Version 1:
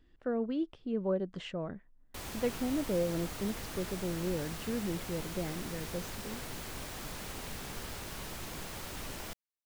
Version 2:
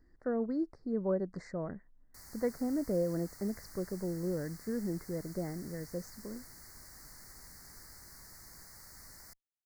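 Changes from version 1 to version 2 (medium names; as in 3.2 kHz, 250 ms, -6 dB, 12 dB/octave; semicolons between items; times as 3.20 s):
background: add amplifier tone stack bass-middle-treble 5-5-5; master: add elliptic band-stop 2–4.5 kHz, stop band 50 dB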